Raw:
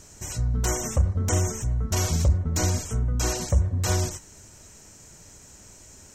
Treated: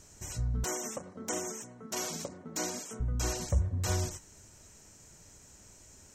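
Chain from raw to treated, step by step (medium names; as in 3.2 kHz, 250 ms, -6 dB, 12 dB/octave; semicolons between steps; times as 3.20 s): 0.64–3.00 s: high-pass 210 Hz 24 dB/octave; trim -7 dB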